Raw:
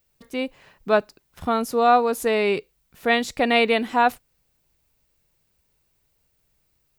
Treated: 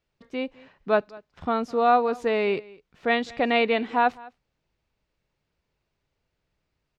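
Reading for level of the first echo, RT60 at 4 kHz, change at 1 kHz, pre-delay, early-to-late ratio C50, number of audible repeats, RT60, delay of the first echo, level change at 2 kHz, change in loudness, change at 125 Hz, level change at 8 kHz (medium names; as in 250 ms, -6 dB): -22.5 dB, no reverb, -2.5 dB, no reverb, no reverb, 1, no reverb, 207 ms, -3.5 dB, -2.5 dB, no reading, under -15 dB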